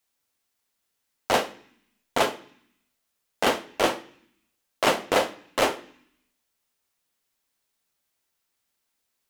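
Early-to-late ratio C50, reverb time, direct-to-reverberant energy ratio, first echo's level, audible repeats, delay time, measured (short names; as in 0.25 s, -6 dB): 18.0 dB, 0.60 s, 11.0 dB, none, none, none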